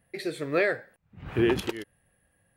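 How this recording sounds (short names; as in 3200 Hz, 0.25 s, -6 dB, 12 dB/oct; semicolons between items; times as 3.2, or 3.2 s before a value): noise floor -71 dBFS; spectral tilt -4.5 dB/oct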